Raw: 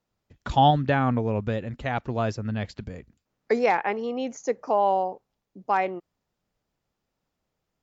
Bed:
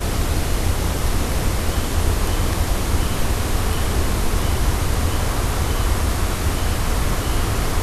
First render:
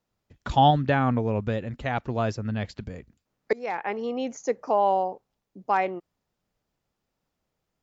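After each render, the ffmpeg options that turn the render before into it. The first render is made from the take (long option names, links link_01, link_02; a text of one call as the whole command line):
ffmpeg -i in.wav -filter_complex "[0:a]asplit=2[link_01][link_02];[link_01]atrim=end=3.53,asetpts=PTS-STARTPTS,afade=type=out:start_time=3.526:duration=0.004:curve=hsin:silence=0.0668344[link_03];[link_02]atrim=start=3.53,asetpts=PTS-STARTPTS,afade=type=in:duration=0.53:silence=0.0668344[link_04];[link_03][link_04]concat=n=2:v=0:a=1" out.wav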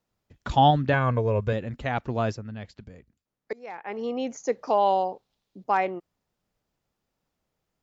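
ffmpeg -i in.wav -filter_complex "[0:a]asettb=1/sr,asplit=3[link_01][link_02][link_03];[link_01]atrim=end=0.934[link_04];[link_02]atrim=start=0.93:end=1.53,asetpts=PTS-STARTPTS,afade=type=in:duration=0.004:curve=qsin,afade=type=out:start_time=0.596:duration=0.004:curve=qsin,aecho=1:1:1.9:0.65,atrim=end_sample=26460[link_05];[link_03]atrim=start=1.526[link_06];[link_04][link_05]acrossfade=duration=0.004:curve1=hsin:curve2=qsin[link_07];[link_07][link_06]acrossfade=duration=0.004:curve1=qsin:curve2=hsin,asettb=1/sr,asplit=3[link_08][link_09][link_10];[link_08]atrim=end=4.524[link_11];[link_09]atrim=start=4.52:end=5.64,asetpts=PTS-STARTPTS,afade=type=in:duration=0.004:curve=qsin,afade=type=out:start_time=1.116:duration=0.004:curve=qsin,equalizer=frequency=3800:width=1.3:gain=11[link_12];[link_10]atrim=start=5.636[link_13];[link_11][link_12]acrossfade=duration=0.004:curve1=hsin:curve2=qsin[link_14];[link_14][link_13]acrossfade=duration=0.004:curve1=qsin:curve2=hsin,asplit=3[link_15][link_16][link_17];[link_15]atrim=end=2.45,asetpts=PTS-STARTPTS,afade=type=out:start_time=2.29:duration=0.16:silence=0.375837[link_18];[link_16]atrim=start=2.45:end=3.85,asetpts=PTS-STARTPTS,volume=-8.5dB[link_19];[link_17]atrim=start=3.85,asetpts=PTS-STARTPTS,afade=type=in:duration=0.16:silence=0.375837[link_20];[link_18][link_19][link_20]concat=n=3:v=0:a=1" out.wav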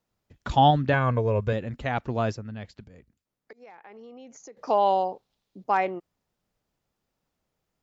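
ffmpeg -i in.wav -filter_complex "[0:a]asettb=1/sr,asplit=3[link_01][link_02][link_03];[link_01]atrim=end=2.844[link_04];[link_02]atrim=start=2.84:end=4.57,asetpts=PTS-STARTPTS,afade=type=in:duration=0.004:curve=qsin,afade=type=out:start_time=1.726:duration=0.004:curve=qsin,acompressor=threshold=-45dB:ratio=5:attack=3.2:release=140:knee=1:detection=peak[link_05];[link_03]atrim=start=4.566[link_06];[link_04][link_05]acrossfade=duration=0.004:curve1=hsin:curve2=qsin[link_07];[link_07][link_06]acrossfade=duration=0.004:curve1=qsin:curve2=hsin" out.wav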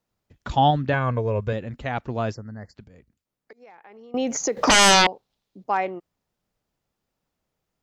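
ffmpeg -i in.wav -filter_complex "[0:a]asettb=1/sr,asplit=3[link_01][link_02][link_03];[link_01]atrim=end=2.344[link_04];[link_02]atrim=start=2.34:end=2.75,asetpts=PTS-STARTPTS,afade=type=in:duration=0.004:curve=qsin,afade=type=out:start_time=0.406:duration=0.004:curve=qsin,asuperstop=centerf=3000:order=20:qfactor=1.3[link_05];[link_03]atrim=start=2.746[link_06];[link_04][link_05]acrossfade=duration=0.004:curve1=hsin:curve2=qsin[link_07];[link_07][link_06]acrossfade=duration=0.004:curve1=qsin:curve2=hsin,asettb=1/sr,asplit=3[link_08][link_09][link_10];[link_08]atrim=end=4.144[link_11];[link_09]atrim=start=4.14:end=5.07,asetpts=PTS-STARTPTS,afade=type=in:duration=0.004:curve=qsin,afade=type=out:start_time=0.926:duration=0.004:curve=qsin,aeval=exprs='0.266*sin(PI/2*7.94*val(0)/0.266)':channel_layout=same[link_12];[link_10]atrim=start=5.066[link_13];[link_11][link_12]acrossfade=duration=0.004:curve1=hsin:curve2=qsin[link_14];[link_14][link_13]acrossfade=duration=0.004:curve1=qsin:curve2=hsin" out.wav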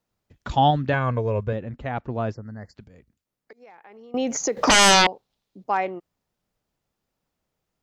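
ffmpeg -i in.wav -filter_complex "[0:a]asettb=1/sr,asplit=3[link_01][link_02][link_03];[link_01]atrim=end=1.434[link_04];[link_02]atrim=start=1.43:end=2.43,asetpts=PTS-STARTPTS,afade=type=in:duration=0.004:curve=qsin,afade=type=out:start_time=0.996:duration=0.004:curve=qsin,highshelf=frequency=2800:gain=-12[link_05];[link_03]atrim=start=2.426[link_06];[link_04][link_05]acrossfade=duration=0.004:curve1=hsin:curve2=qsin[link_07];[link_07][link_06]acrossfade=duration=0.004:curve1=qsin:curve2=hsin" out.wav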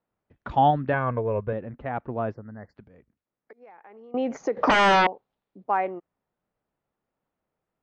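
ffmpeg -i in.wav -af "lowpass=1800,lowshelf=frequency=150:gain=-9" out.wav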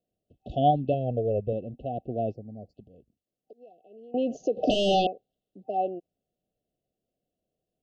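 ffmpeg -i in.wav -af "bass=frequency=250:gain=-1,treble=frequency=4000:gain=-4,afftfilt=real='re*(1-between(b*sr/4096,770,2600))':imag='im*(1-between(b*sr/4096,770,2600))':win_size=4096:overlap=0.75" out.wav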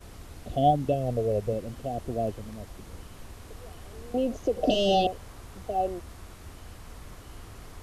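ffmpeg -i in.wav -i bed.wav -filter_complex "[1:a]volume=-24.5dB[link_01];[0:a][link_01]amix=inputs=2:normalize=0" out.wav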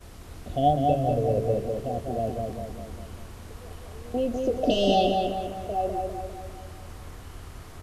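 ffmpeg -i in.wav -filter_complex "[0:a]asplit=2[link_01][link_02];[link_02]adelay=25,volume=-12dB[link_03];[link_01][link_03]amix=inputs=2:normalize=0,asplit=2[link_04][link_05];[link_05]adelay=200,lowpass=frequency=3300:poles=1,volume=-3.5dB,asplit=2[link_06][link_07];[link_07]adelay=200,lowpass=frequency=3300:poles=1,volume=0.52,asplit=2[link_08][link_09];[link_09]adelay=200,lowpass=frequency=3300:poles=1,volume=0.52,asplit=2[link_10][link_11];[link_11]adelay=200,lowpass=frequency=3300:poles=1,volume=0.52,asplit=2[link_12][link_13];[link_13]adelay=200,lowpass=frequency=3300:poles=1,volume=0.52,asplit=2[link_14][link_15];[link_15]adelay=200,lowpass=frequency=3300:poles=1,volume=0.52,asplit=2[link_16][link_17];[link_17]adelay=200,lowpass=frequency=3300:poles=1,volume=0.52[link_18];[link_04][link_06][link_08][link_10][link_12][link_14][link_16][link_18]amix=inputs=8:normalize=0" out.wav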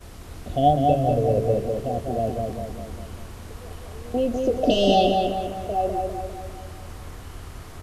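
ffmpeg -i in.wav -af "volume=3.5dB" out.wav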